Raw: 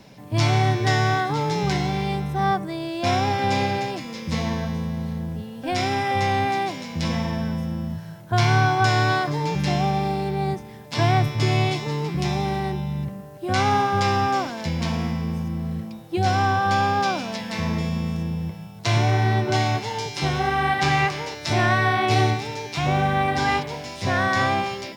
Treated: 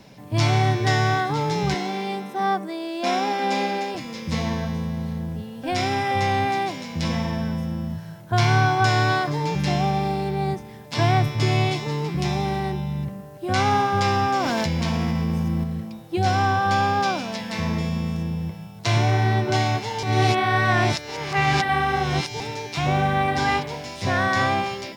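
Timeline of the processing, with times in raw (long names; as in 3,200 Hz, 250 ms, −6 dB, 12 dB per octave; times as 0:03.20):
0:01.74–0:03.95: elliptic high-pass filter 200 Hz
0:14.40–0:15.64: envelope flattener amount 100%
0:20.03–0:22.40: reverse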